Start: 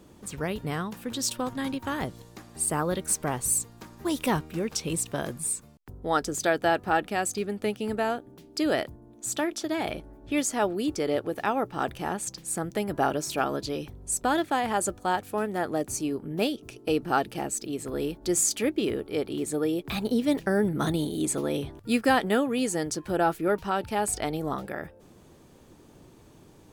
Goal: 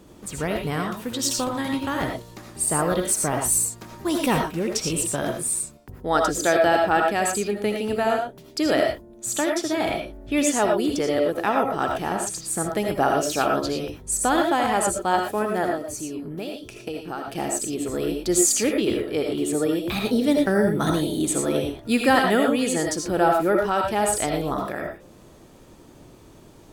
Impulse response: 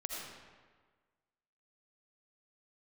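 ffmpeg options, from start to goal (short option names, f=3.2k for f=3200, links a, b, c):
-filter_complex "[0:a]asettb=1/sr,asplit=3[a][b][c];[a]atrim=end=15.694[d];[b]atrim=start=15.69:end=17.28,asetpts=PTS-STARTPTS,afade=t=in:d=0.004:c=qsin,afade=t=out:st=1.586:d=0.004:c=qsin,acompressor=threshold=-34dB:ratio=5[e];[c]atrim=start=17.276[f];[d][e]acrossfade=d=0.004:c1=hsin:c2=qsin[g];[g][f]acrossfade=d=0.004:c1=qsin:c2=hsin[h];[1:a]atrim=start_sample=2205,afade=t=out:st=0.17:d=0.01,atrim=end_sample=7938[i];[h][i]afir=irnorm=-1:irlink=0,volume=6.5dB"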